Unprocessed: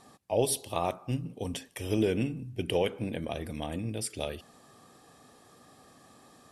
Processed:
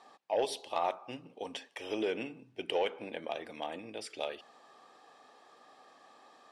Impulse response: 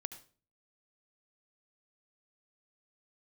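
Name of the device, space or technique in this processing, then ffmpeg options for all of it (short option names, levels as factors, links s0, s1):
intercom: -af "highpass=480,lowpass=4300,equalizer=f=860:t=o:w=0.34:g=4,asoftclip=type=tanh:threshold=0.106"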